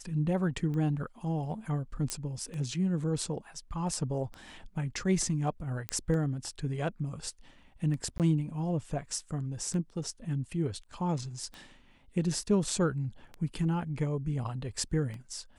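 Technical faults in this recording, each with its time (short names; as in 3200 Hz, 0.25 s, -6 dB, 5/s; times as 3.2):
tick 33 1/3 rpm -28 dBFS
2.1 pop -16 dBFS
5.89 pop -15 dBFS
8.18–8.2 gap 18 ms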